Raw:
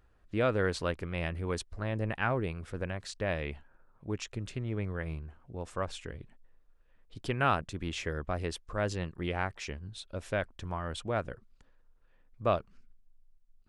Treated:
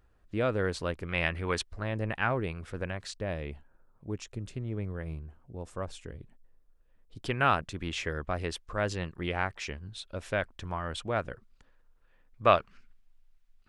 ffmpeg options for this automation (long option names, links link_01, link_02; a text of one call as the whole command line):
ffmpeg -i in.wav -af "asetnsamples=nb_out_samples=441:pad=0,asendcmd='1.09 equalizer g 9.5;1.63 equalizer g 2.5;3.15 equalizer g -6;7.23 equalizer g 3.5;12.44 equalizer g 12.5',equalizer=frequency=2100:width_type=o:width=2.9:gain=-1.5" out.wav